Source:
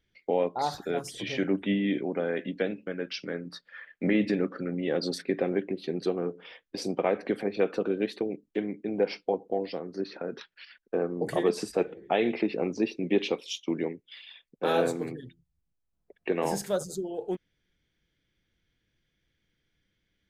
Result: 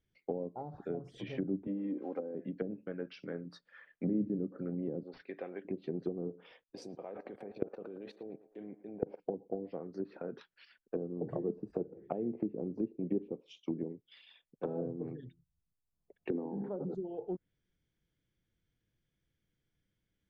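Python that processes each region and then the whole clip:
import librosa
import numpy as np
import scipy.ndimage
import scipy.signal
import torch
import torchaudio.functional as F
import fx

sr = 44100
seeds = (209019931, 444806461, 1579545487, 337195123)

y = fx.chain(x, sr, fx.block_float(bits=5),
    fx.bandpass_edges(low_hz=340.0, high_hz=4800.0),
    fx.comb(ms=3.8, depth=0.52), at=(1.67, 2.35))
y = fx.chain(y, sr, fx.highpass(hz=1100.0, slope=6),
    fx.resample_bad(factor=4, down='none', up='filtered'), at=(5.03, 5.65))
y = fx.chain(y, sr, fx.level_steps(step_db=21),
    fx.peak_eq(hz=670.0, db=6.0, octaves=1.8),
    fx.echo_banded(ms=112, feedback_pct=61, hz=950.0, wet_db=-12.5), at=(6.62, 9.2))
y = fx.chain(y, sr, fx.cabinet(low_hz=220.0, low_slope=24, high_hz=3100.0, hz=(260.0, 600.0, 860.0, 2700.0), db=(6, -7, 6, -7)),
    fx.sustainer(db_per_s=30.0), at=(16.3, 16.95))
y = fx.env_lowpass_down(y, sr, base_hz=350.0, full_db=-24.5)
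y = fx.graphic_eq(y, sr, hz=(125, 2000, 4000), db=(4, -5, -5))
y = y * librosa.db_to_amplitude(-6.5)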